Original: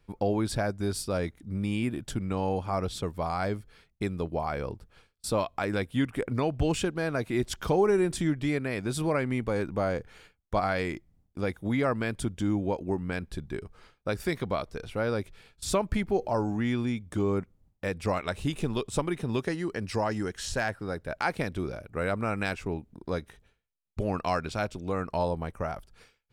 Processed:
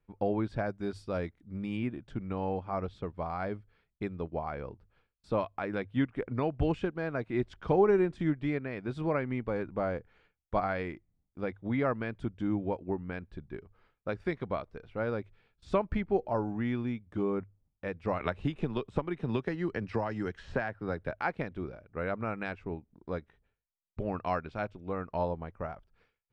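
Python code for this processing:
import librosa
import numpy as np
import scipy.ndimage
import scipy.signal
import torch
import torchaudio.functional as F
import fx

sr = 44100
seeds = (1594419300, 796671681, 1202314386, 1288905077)

y = fx.high_shelf(x, sr, hz=5200.0, db=10.0, at=(0.66, 1.77))
y = fx.band_squash(y, sr, depth_pct=100, at=(18.2, 21.11))
y = scipy.signal.sosfilt(scipy.signal.butter(2, 2500.0, 'lowpass', fs=sr, output='sos'), y)
y = fx.hum_notches(y, sr, base_hz=50, count=2)
y = fx.upward_expand(y, sr, threshold_db=-42.0, expansion=1.5)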